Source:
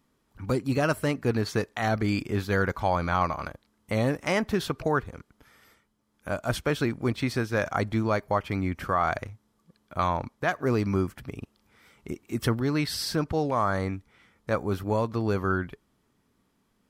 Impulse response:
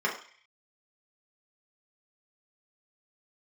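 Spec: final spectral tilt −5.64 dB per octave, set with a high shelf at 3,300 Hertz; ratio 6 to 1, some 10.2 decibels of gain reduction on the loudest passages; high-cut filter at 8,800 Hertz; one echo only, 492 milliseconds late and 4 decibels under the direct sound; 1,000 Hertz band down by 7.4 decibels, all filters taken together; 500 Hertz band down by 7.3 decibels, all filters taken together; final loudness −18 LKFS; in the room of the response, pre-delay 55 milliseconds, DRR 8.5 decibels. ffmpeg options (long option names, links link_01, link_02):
-filter_complex "[0:a]lowpass=8800,equalizer=frequency=500:width_type=o:gain=-7.5,equalizer=frequency=1000:width_type=o:gain=-6.5,highshelf=frequency=3300:gain=-8,acompressor=threshold=-34dB:ratio=6,aecho=1:1:492:0.631,asplit=2[link_01][link_02];[1:a]atrim=start_sample=2205,adelay=55[link_03];[link_02][link_03]afir=irnorm=-1:irlink=0,volume=-19.5dB[link_04];[link_01][link_04]amix=inputs=2:normalize=0,volume=20.5dB"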